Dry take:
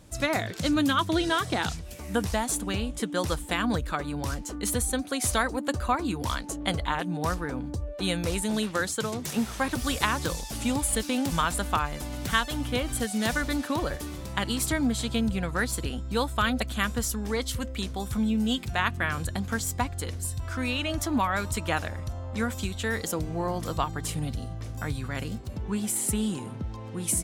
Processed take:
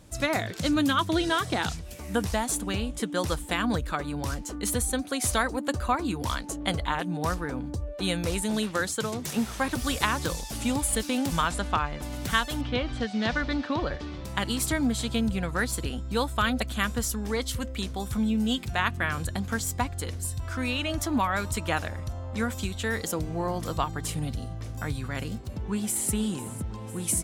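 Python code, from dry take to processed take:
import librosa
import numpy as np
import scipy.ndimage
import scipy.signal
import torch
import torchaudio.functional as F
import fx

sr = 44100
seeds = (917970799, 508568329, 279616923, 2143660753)

y = fx.lowpass(x, sr, hz=fx.line((11.47, 8600.0), (12.01, 3400.0)), slope=12, at=(11.47, 12.01), fade=0.02)
y = fx.lowpass(y, sr, hz=4800.0, slope=24, at=(12.61, 14.25))
y = fx.echo_throw(y, sr, start_s=25.37, length_s=0.75, ms=500, feedback_pct=70, wet_db=-15.5)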